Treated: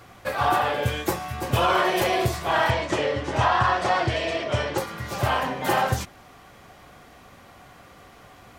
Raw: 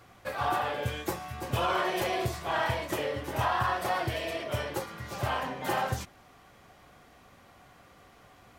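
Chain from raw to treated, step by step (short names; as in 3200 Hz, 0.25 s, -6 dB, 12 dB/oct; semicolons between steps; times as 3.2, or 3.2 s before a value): 2.7–4.78 LPF 7500 Hz 24 dB/oct; gain +7.5 dB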